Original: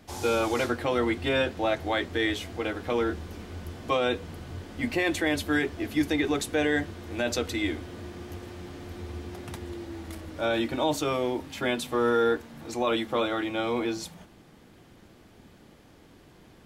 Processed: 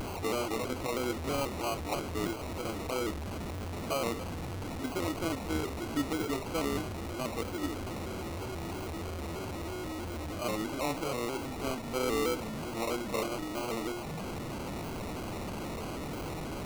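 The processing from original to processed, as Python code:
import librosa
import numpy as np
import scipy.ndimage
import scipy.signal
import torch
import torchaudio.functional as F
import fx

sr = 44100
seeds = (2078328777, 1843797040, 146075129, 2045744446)

y = fx.delta_mod(x, sr, bps=16000, step_db=-24.5)
y = fx.sample_hold(y, sr, seeds[0], rate_hz=1700.0, jitter_pct=0)
y = fx.vibrato_shape(y, sr, shape='square', rate_hz=3.1, depth_cents=100.0)
y = F.gain(torch.from_numpy(y), -7.0).numpy()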